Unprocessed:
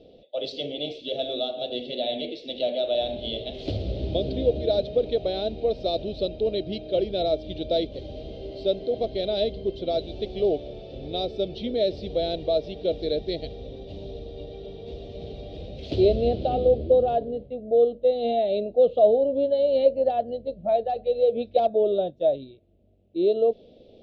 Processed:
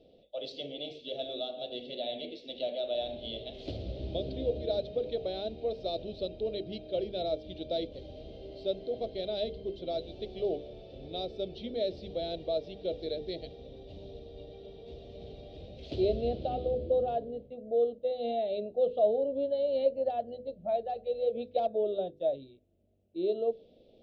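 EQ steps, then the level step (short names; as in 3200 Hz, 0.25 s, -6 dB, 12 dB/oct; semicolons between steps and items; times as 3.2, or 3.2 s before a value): notches 50/100/150/200/250/300/350/400/450/500 Hz; -8.0 dB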